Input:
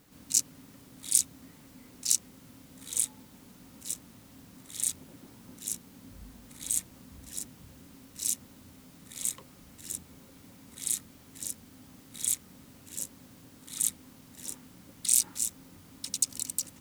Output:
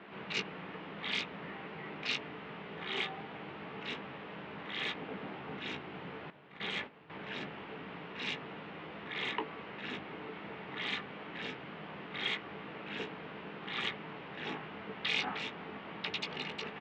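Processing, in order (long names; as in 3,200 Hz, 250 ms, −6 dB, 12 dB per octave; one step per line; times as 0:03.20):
double-tracking delay 17 ms −9 dB
single-sideband voice off tune −95 Hz 370–3,000 Hz
0:06.30–0:07.10: noise gate −57 dBFS, range −13 dB
level +16 dB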